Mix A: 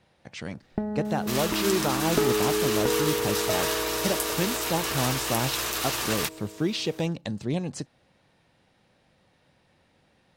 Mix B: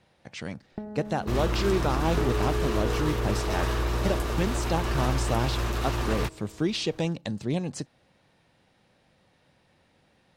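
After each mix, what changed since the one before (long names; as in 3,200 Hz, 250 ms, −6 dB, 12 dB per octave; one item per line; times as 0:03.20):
first sound −10.5 dB
second sound: add spectral tilt −4.5 dB per octave
reverb: on, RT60 0.80 s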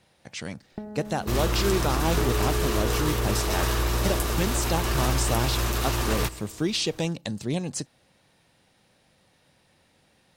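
second sound: send on
master: remove low-pass filter 3,000 Hz 6 dB per octave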